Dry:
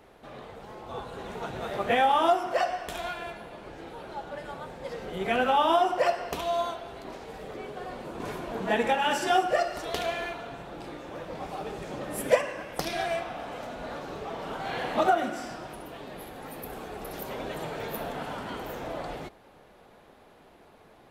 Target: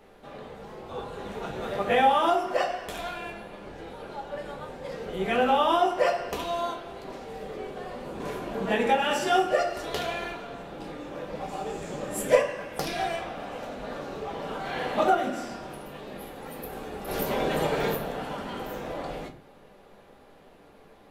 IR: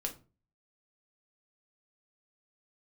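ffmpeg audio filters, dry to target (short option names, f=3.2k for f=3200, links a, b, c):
-filter_complex "[0:a]asettb=1/sr,asplit=3[a][b][c];[a]atrim=end=11.484[d];[b]atrim=start=11.48:end=12.31,asetpts=PTS-STARTPTS,afade=t=in:d=0.004:c=qsin,afade=t=out:st=0.826:d=0.004:c=qsin,equalizer=f=7.3k:t=o:w=0.36:g=11[e];[c]atrim=start=12.306[f];[d][e]acrossfade=d=0.004:c1=hsin:c2=qsin[g];[g][f]acrossfade=d=0.004:c1=qsin:c2=hsin,asplit=3[h][i][j];[h]afade=t=out:st=17.07:d=0.02[k];[i]acontrast=85,afade=t=in:st=17.07:d=0.02,afade=t=out:st=17.93:d=0.02[l];[j]afade=t=in:st=17.93:d=0.02[m];[k][l][m]amix=inputs=3:normalize=0[n];[1:a]atrim=start_sample=2205[o];[n][o]afir=irnorm=-1:irlink=0"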